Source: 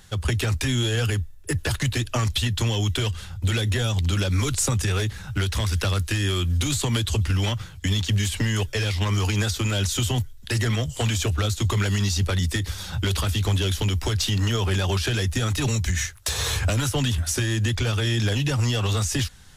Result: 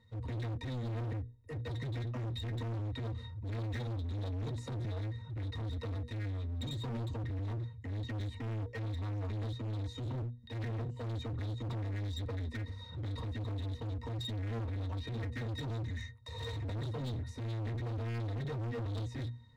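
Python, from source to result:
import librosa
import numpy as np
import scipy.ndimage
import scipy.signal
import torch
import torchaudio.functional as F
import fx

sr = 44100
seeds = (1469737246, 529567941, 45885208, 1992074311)

y = fx.transient(x, sr, attack_db=-1, sustain_db=5, at=(2.21, 4.78))
y = fx.hum_notches(y, sr, base_hz=60, count=8)
y = fx.octave_resonator(y, sr, note='A#', decay_s=0.11)
y = np.clip(y, -10.0 ** (-35.5 / 20.0), 10.0 ** (-35.5 / 20.0))
y = fx.transient(y, sr, attack_db=-4, sustain_db=1)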